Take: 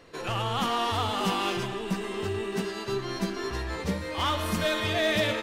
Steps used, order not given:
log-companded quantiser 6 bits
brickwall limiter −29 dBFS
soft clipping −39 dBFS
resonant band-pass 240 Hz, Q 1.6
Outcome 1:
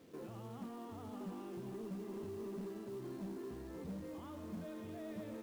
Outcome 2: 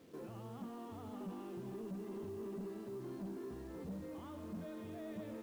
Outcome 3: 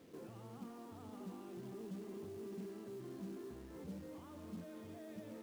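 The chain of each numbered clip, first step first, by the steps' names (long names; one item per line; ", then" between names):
brickwall limiter, then resonant band-pass, then soft clipping, then log-companded quantiser
brickwall limiter, then resonant band-pass, then log-companded quantiser, then soft clipping
brickwall limiter, then soft clipping, then resonant band-pass, then log-companded quantiser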